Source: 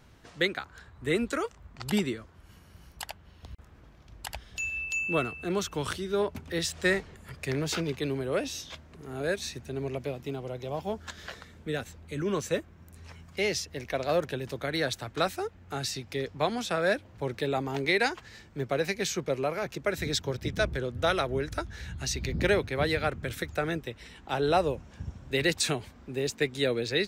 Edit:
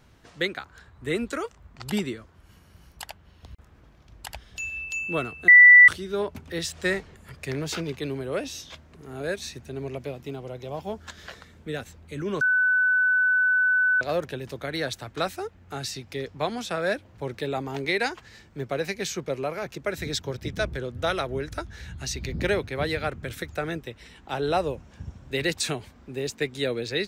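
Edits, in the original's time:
5.48–5.88 s: bleep 1.97 kHz -7.5 dBFS
12.41–14.01 s: bleep 1.5 kHz -18 dBFS

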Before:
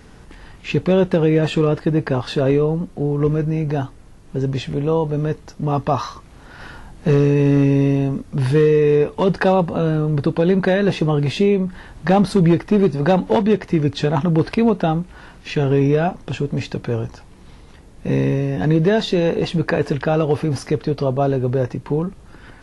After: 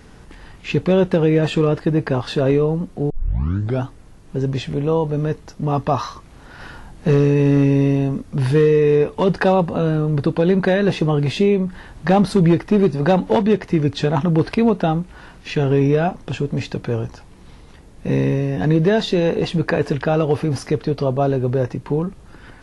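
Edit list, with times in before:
3.10 s: tape start 0.74 s

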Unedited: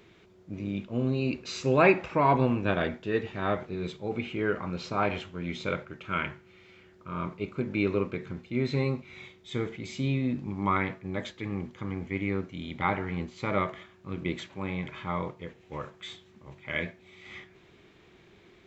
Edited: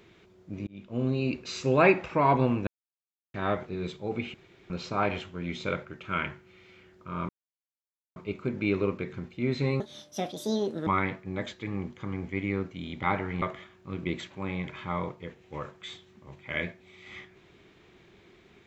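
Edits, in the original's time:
0.67–1.03 s: fade in
2.67–3.34 s: mute
4.34–4.70 s: room tone
7.29 s: insert silence 0.87 s
8.93–10.65 s: speed 161%
13.20–13.61 s: delete

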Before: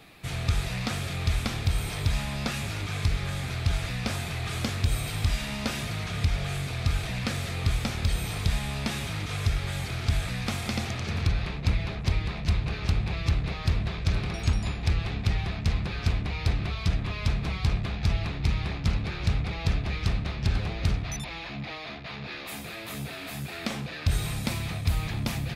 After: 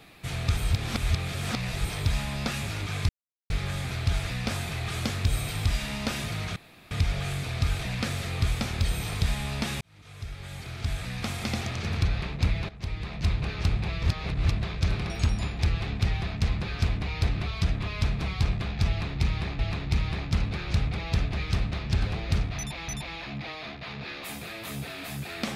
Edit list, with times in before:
0.57–1.85 s: reverse
3.09 s: insert silence 0.41 s
6.15 s: insert room tone 0.35 s
9.05–10.83 s: fade in
11.93–12.56 s: fade in, from -14.5 dB
13.27–13.75 s: reverse
18.12–18.83 s: loop, 2 plays
21.11–21.41 s: loop, 2 plays

